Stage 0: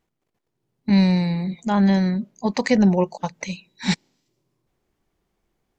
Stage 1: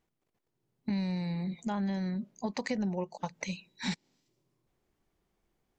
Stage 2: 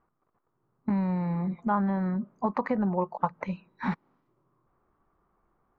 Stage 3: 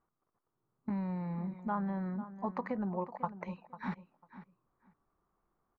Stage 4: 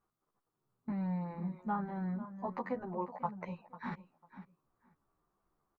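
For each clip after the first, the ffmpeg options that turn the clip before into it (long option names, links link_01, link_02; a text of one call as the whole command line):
ffmpeg -i in.wav -af "acompressor=threshold=-27dB:ratio=4,volume=-4.5dB" out.wav
ffmpeg -i in.wav -af "lowpass=frequency=1200:width_type=q:width=4.4,volume=4.5dB" out.wav
ffmpeg -i in.wav -filter_complex "[0:a]asplit=2[link_01][link_02];[link_02]adelay=497,lowpass=frequency=2800:poles=1,volume=-13.5dB,asplit=2[link_03][link_04];[link_04]adelay=497,lowpass=frequency=2800:poles=1,volume=0.18[link_05];[link_01][link_03][link_05]amix=inputs=3:normalize=0,volume=-8.5dB" out.wav
ffmpeg -i in.wav -filter_complex "[0:a]asplit=2[link_01][link_02];[link_02]adelay=11.4,afreqshift=-3[link_03];[link_01][link_03]amix=inputs=2:normalize=1,volume=2dB" out.wav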